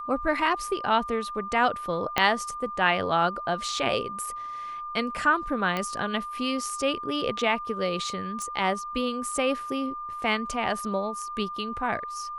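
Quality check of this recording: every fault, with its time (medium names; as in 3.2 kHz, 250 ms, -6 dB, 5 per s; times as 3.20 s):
whine 1.2 kHz -33 dBFS
2.18 s: pop -7 dBFS
5.77 s: pop -15 dBFS
8.42 s: pop -22 dBFS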